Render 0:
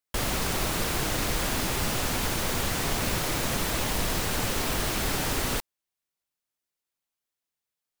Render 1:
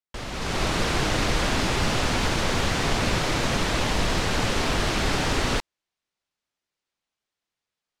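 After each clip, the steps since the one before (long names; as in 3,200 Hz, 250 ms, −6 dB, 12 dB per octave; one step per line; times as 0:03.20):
low-pass filter 5,600 Hz 12 dB per octave
automatic gain control gain up to 12 dB
level −6.5 dB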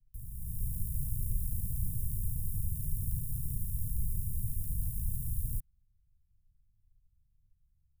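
samples sorted by size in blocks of 32 samples
background noise brown −62 dBFS
inverse Chebyshev band-stop filter 520–3,400 Hz, stop band 70 dB
level −5 dB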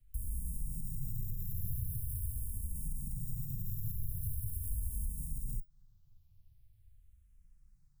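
brickwall limiter −25 dBFS, peak gain reduction 6.5 dB
downward compressor, threshold −41 dBFS, peak gain reduction 11 dB
frequency shifter mixed with the dry sound −0.43 Hz
level +10.5 dB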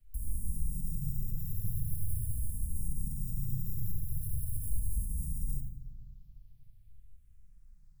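rectangular room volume 930 cubic metres, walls mixed, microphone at 1.3 metres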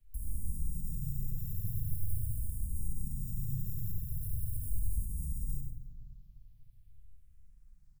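single-tap delay 100 ms −8.5 dB
level −2 dB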